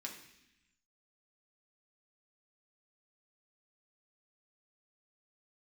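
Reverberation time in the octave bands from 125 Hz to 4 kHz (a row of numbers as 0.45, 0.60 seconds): 1.3, 1.2, 0.80, 0.80, 1.2, 1.1 seconds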